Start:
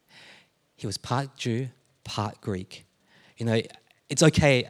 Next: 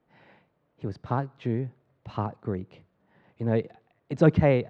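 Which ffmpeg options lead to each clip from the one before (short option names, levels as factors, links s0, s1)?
-af "lowpass=1300"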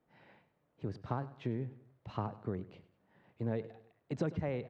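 -af "acompressor=threshold=0.0562:ratio=12,aecho=1:1:100|200|300:0.141|0.0579|0.0237,volume=0.531"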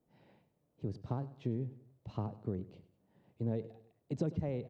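-af "equalizer=f=1600:t=o:w=2:g=-13,volume=1.19"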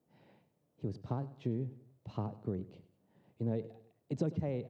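-af "highpass=83,volume=1.12"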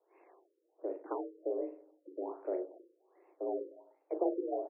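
-af "aecho=1:1:37|55:0.473|0.282,highpass=f=160:t=q:w=0.5412,highpass=f=160:t=q:w=1.307,lowpass=f=3400:t=q:w=0.5176,lowpass=f=3400:t=q:w=0.7071,lowpass=f=3400:t=q:w=1.932,afreqshift=180,afftfilt=real='re*lt(b*sr/1024,540*pow(2800/540,0.5+0.5*sin(2*PI*1.3*pts/sr)))':imag='im*lt(b*sr/1024,540*pow(2800/540,0.5+0.5*sin(2*PI*1.3*pts/sr)))':win_size=1024:overlap=0.75,volume=1.19"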